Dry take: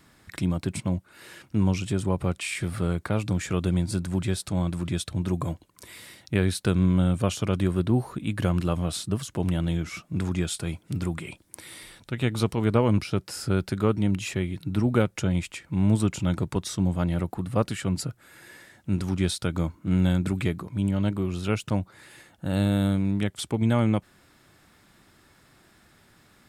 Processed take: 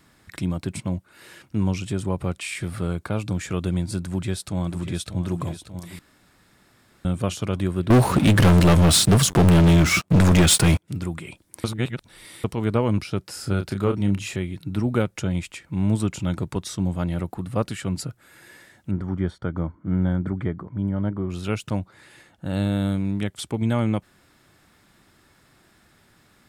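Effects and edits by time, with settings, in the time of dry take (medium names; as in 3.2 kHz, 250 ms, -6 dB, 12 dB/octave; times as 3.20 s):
2.87–3.36 s: band-stop 1.9 kHz, Q 8.8
4.05–5.20 s: echo throw 590 ms, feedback 70%, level -11 dB
5.99–7.05 s: room tone
7.90–10.88 s: waveshaping leveller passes 5
11.64–12.44 s: reverse
13.40–14.36 s: doubling 30 ms -7 dB
18.91–21.30 s: Savitzky-Golay filter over 41 samples
21.80–22.88 s: treble shelf 11 kHz -9.5 dB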